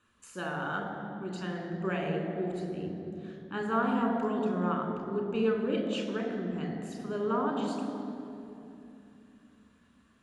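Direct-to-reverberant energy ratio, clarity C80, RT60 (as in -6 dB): 2.0 dB, 5.0 dB, 3.0 s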